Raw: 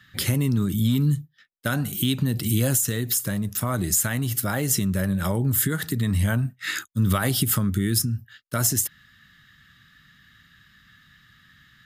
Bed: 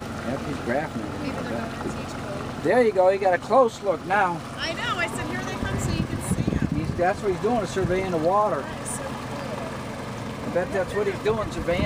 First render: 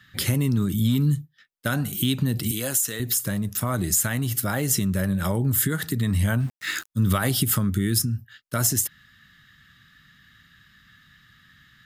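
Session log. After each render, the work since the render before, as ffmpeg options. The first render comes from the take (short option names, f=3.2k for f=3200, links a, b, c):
-filter_complex "[0:a]asettb=1/sr,asplit=3[a][b][c];[a]atrim=end=2.514[d];[b]atrim=start=2.51:end=3,asetpts=PTS-STARTPTS,afade=t=in:d=0.004:c=qsin,afade=t=out:st=0.486:d=0.004:c=qsin,highpass=f=560:p=1[e];[c]atrim=start=2.996[f];[d][e]acrossfade=d=0.004:c1=hsin:c2=qsin[g];[g][f]acrossfade=d=0.004:c1=qsin:c2=hsin,asettb=1/sr,asplit=3[h][i][j];[h]atrim=end=6.404[k];[i]atrim=start=6.4:end=6.9,asetpts=PTS-STARTPTS,afade=t=in:d=0.004:c=qsin,afade=t=out:st=0.496:d=0.004:c=qsin,aeval=exprs='val(0)*gte(abs(val(0)),0.0106)':c=same[l];[j]atrim=start=6.896[m];[k][l]acrossfade=d=0.004:c1=hsin:c2=qsin[n];[n][m]acrossfade=d=0.004:c1=qsin:c2=hsin"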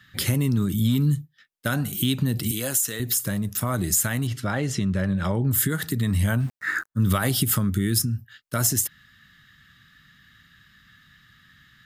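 -filter_complex "[0:a]asettb=1/sr,asplit=3[a][b][c];[a]atrim=end=4.274[d];[b]atrim=start=4.27:end=5.51,asetpts=PTS-STARTPTS,afade=t=in:d=0.004:c=qsin,afade=t=out:st=1.236:d=0.004:c=qsin,lowpass=4.5k[e];[c]atrim=start=5.506[f];[d][e]acrossfade=d=0.004:c1=hsin:c2=qsin[g];[g][f]acrossfade=d=0.004:c1=qsin:c2=hsin,asettb=1/sr,asplit=3[h][i][j];[h]atrim=end=6.594[k];[i]atrim=start=6.59:end=7,asetpts=PTS-STARTPTS,afade=t=in:d=0.004:c=qsin,afade=t=out:st=0.406:d=0.004:c=qsin,highshelf=f=2.2k:t=q:w=3:g=-10[l];[j]atrim=start=6.996[m];[k][l]acrossfade=d=0.004:c1=hsin:c2=qsin[n];[n][m]acrossfade=d=0.004:c1=qsin:c2=hsin"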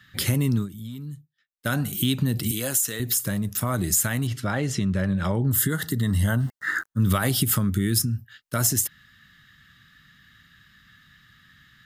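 -filter_complex "[0:a]asettb=1/sr,asplit=3[a][b][c];[a]atrim=end=5.414[d];[b]atrim=start=5.41:end=6.83,asetpts=PTS-STARTPTS,afade=t=in:d=0.004:c=qsin,afade=t=out:st=1.416:d=0.004:c=qsin,asuperstop=centerf=2400:order=20:qfactor=4.5[e];[c]atrim=start=6.826[f];[d][e]acrossfade=d=0.004:c1=hsin:c2=qsin[g];[g][f]acrossfade=d=0.004:c1=qsin:c2=hsin,asplit=3[h][i][j];[h]atrim=end=0.69,asetpts=PTS-STARTPTS,afade=t=out:st=0.56:d=0.13:silence=0.177828[k];[i]atrim=start=0.69:end=1.56,asetpts=PTS-STARTPTS,volume=-15dB[l];[j]atrim=start=1.56,asetpts=PTS-STARTPTS,afade=t=in:d=0.13:silence=0.177828[m];[k][l][m]concat=n=3:v=0:a=1"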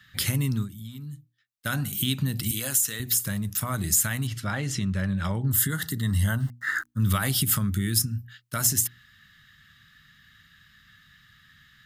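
-af "equalizer=f=440:t=o:w=1.9:g=-8.5,bandreject=f=60:t=h:w=6,bandreject=f=120:t=h:w=6,bandreject=f=180:t=h:w=6,bandreject=f=240:t=h:w=6,bandreject=f=300:t=h:w=6,bandreject=f=360:t=h:w=6"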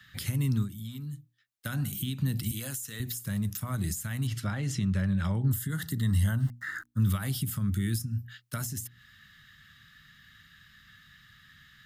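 -filter_complex "[0:a]alimiter=limit=-16.5dB:level=0:latency=1:release=210,acrossover=split=260[a][b];[b]acompressor=threshold=-39dB:ratio=2.5[c];[a][c]amix=inputs=2:normalize=0"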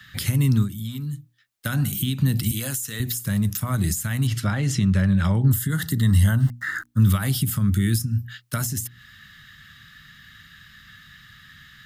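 -af "volume=8.5dB"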